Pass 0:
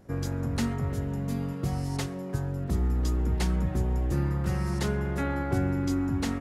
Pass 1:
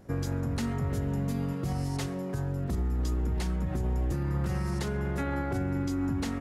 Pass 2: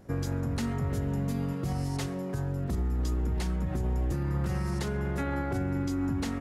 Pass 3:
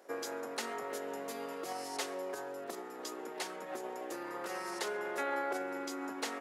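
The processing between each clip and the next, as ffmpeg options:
-af "alimiter=limit=-24dB:level=0:latency=1:release=60,volume=1.5dB"
-af anull
-af "highpass=f=410:w=0.5412,highpass=f=410:w=1.3066,volume=1dB"

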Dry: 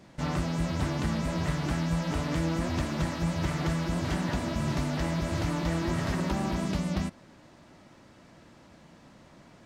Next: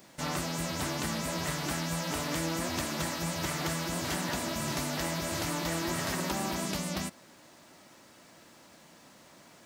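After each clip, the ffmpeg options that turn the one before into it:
-af "aemphasis=mode=production:type=bsi"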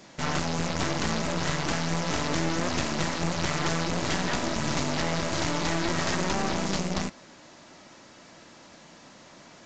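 -af "aeval=exprs='0.15*(cos(1*acos(clip(val(0)/0.15,-1,1)))-cos(1*PI/2))+0.0266*(cos(5*acos(clip(val(0)/0.15,-1,1)))-cos(5*PI/2))+0.0376*(cos(8*acos(clip(val(0)/0.15,-1,1)))-cos(8*PI/2))':c=same,aresample=16000,aresample=44100"

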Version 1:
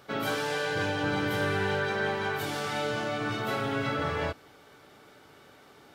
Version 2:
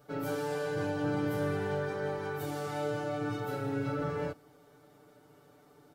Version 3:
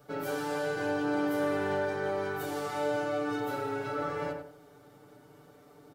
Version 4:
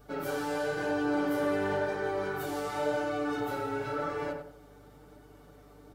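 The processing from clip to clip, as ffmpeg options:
-af "equalizer=f=2.7k:t=o:w=2.6:g=-12.5,aecho=1:1:6.8:0.97,volume=-5dB"
-filter_complex "[0:a]acrossover=split=300|2300[a][b][c];[a]acompressor=threshold=-48dB:ratio=5[d];[d][b][c]amix=inputs=3:normalize=0,asplit=2[e][f];[f]adelay=92,lowpass=f=1.8k:p=1,volume=-4dB,asplit=2[g][h];[h]adelay=92,lowpass=f=1.8k:p=1,volume=0.34,asplit=2[i][j];[j]adelay=92,lowpass=f=1.8k:p=1,volume=0.34,asplit=2[k][l];[l]adelay=92,lowpass=f=1.8k:p=1,volume=0.34[m];[e][g][i][k][m]amix=inputs=5:normalize=0,volume=2.5dB"
-af "flanger=delay=2.6:depth=8.1:regen=-42:speed=0.95:shape=sinusoidal,aeval=exprs='val(0)+0.000794*(sin(2*PI*50*n/s)+sin(2*PI*2*50*n/s)/2+sin(2*PI*3*50*n/s)/3+sin(2*PI*4*50*n/s)/4+sin(2*PI*5*50*n/s)/5)':c=same,volume=4dB"

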